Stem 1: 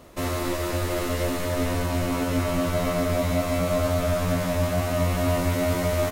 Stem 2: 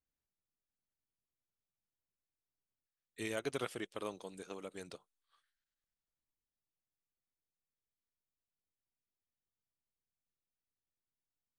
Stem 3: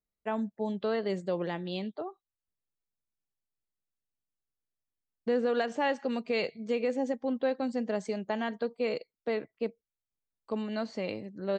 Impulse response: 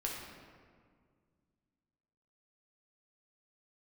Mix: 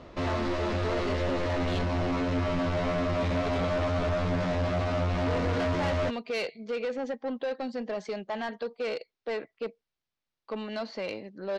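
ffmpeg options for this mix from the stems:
-filter_complex "[0:a]highshelf=frequency=3100:gain=-4,volume=-5.5dB[link_01];[1:a]volume=-1.5dB[link_02];[2:a]highpass=frequency=510:poles=1,asoftclip=type=tanh:threshold=-29dB,volume=-1dB[link_03];[link_01][link_02][link_03]amix=inputs=3:normalize=0,lowpass=frequency=5200:width=0.5412,lowpass=frequency=5200:width=1.3066,acontrast=75,asoftclip=type=tanh:threshold=-24.5dB"

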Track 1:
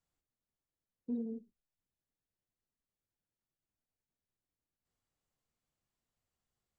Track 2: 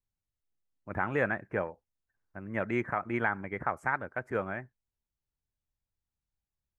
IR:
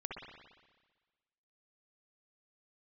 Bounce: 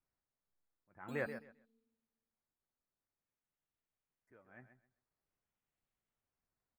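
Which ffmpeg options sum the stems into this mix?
-filter_complex "[0:a]acompressor=threshold=-42dB:ratio=6,acrusher=samples=12:mix=1:aa=0.000001:lfo=1:lforange=7.2:lforate=0.47,volume=-6.5dB,asplit=2[link_01][link_02];[link_02]volume=-12dB[link_03];[1:a]flanger=delay=2.7:depth=3.3:regen=66:speed=0.48:shape=triangular,aeval=exprs='val(0)*pow(10,-25*(0.5-0.5*cos(2*PI*1.7*n/s))/20)':channel_layout=same,volume=-4.5dB,asplit=3[link_04][link_05][link_06];[link_04]atrim=end=1.27,asetpts=PTS-STARTPTS,afade=type=out:start_time=1.266:duration=0.004:curve=hsin[link_07];[link_05]atrim=start=1.27:end=4.27,asetpts=PTS-STARTPTS,volume=0[link_08];[link_06]atrim=start=4.27,asetpts=PTS-STARTPTS,afade=type=in:duration=0.004:curve=hsin[link_09];[link_07][link_08][link_09]concat=n=3:v=0:a=1,asplit=2[link_10][link_11];[link_11]volume=-10.5dB[link_12];[2:a]atrim=start_sample=2205[link_13];[link_03][link_13]afir=irnorm=-1:irlink=0[link_14];[link_12]aecho=0:1:131|262|393:1|0.21|0.0441[link_15];[link_01][link_10][link_14][link_15]amix=inputs=4:normalize=0"

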